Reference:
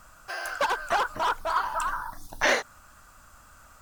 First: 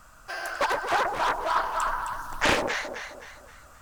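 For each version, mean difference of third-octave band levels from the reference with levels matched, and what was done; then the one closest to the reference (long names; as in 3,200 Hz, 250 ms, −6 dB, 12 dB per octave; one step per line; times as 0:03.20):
5.5 dB: on a send: delay that swaps between a low-pass and a high-pass 131 ms, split 810 Hz, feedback 63%, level −2.5 dB
on the sum: highs frequency-modulated by the lows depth 0.69 ms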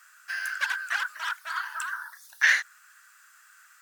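8.5 dB: high-pass with resonance 1,700 Hz, resonance Q 4.4
high-shelf EQ 2,500 Hz +9 dB
level −9 dB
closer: first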